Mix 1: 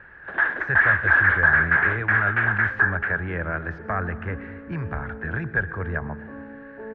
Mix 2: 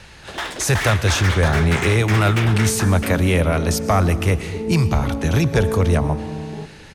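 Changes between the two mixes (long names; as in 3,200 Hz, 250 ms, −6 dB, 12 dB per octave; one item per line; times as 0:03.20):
first sound −8.0 dB
second sound: entry −1.25 s
master: remove transistor ladder low-pass 1,700 Hz, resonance 85%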